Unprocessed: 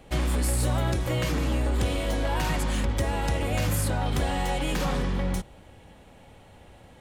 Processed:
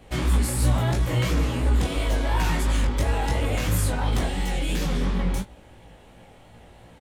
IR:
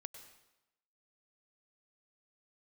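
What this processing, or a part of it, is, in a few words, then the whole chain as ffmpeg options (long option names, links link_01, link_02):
double-tracked vocal: -filter_complex "[0:a]asettb=1/sr,asplit=3[link_01][link_02][link_03];[link_01]atrim=end=4.254[link_04];[link_02]atrim=start=4.25:end=5.01,asetpts=PTS-STARTPTS,afade=type=in:duration=0.004:curve=qsin,afade=type=out:start_time=0.756:duration=0.004:curve=qsin,equalizer=frequency=1000:width=1.2:gain=-9.5[link_05];[link_03]atrim=start=5.006[link_06];[link_04][link_05]acrossfade=duration=0.004:curve1=hsin:curve2=qsin[link_07];[link_07][link_06]acrossfade=duration=0.004:curve1=qsin:curve2=hsin,asplit=2[link_08][link_09];[link_09]adelay=17,volume=-6dB[link_10];[link_08][link_10]amix=inputs=2:normalize=0,flanger=delay=17:depth=7.8:speed=2.9,volume=3.5dB"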